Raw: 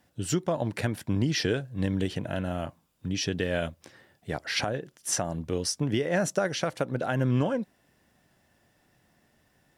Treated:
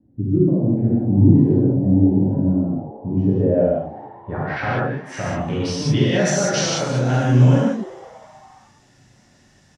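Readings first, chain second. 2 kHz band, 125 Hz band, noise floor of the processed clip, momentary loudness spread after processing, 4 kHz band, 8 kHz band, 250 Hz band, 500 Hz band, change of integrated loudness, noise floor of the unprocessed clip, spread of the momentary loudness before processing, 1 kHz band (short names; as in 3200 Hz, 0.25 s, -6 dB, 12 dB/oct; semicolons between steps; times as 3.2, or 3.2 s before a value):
+5.5 dB, +13.5 dB, -55 dBFS, 13 LU, +4.0 dB, +4.5 dB, +13.5 dB, +8.5 dB, +11.0 dB, -68 dBFS, 9 LU, +8.0 dB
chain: in parallel at -2.5 dB: limiter -25.5 dBFS, peak gain reduction 11 dB; on the sum: tone controls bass +5 dB, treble +2 dB; low-pass sweep 310 Hz -> 6400 Hz, 2.77–6.51; vibrato 8.8 Hz 30 cents; on a send: frequency-shifting echo 0.205 s, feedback 61%, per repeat +130 Hz, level -19 dB; on the sum: non-linear reverb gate 0.22 s flat, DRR -8 dB; gain -4.5 dB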